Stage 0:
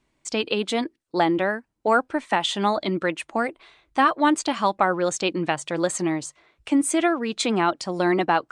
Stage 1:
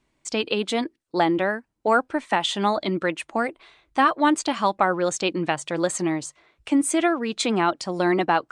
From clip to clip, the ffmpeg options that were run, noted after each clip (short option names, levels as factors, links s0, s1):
-af anull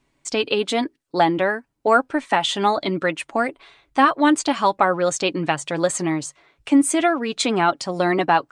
-af "aecho=1:1:7.2:0.36,volume=1.33"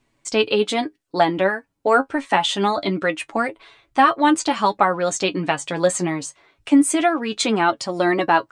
-af "flanger=delay=8.7:depth=2.4:regen=41:speed=0.25:shape=triangular,volume=1.68"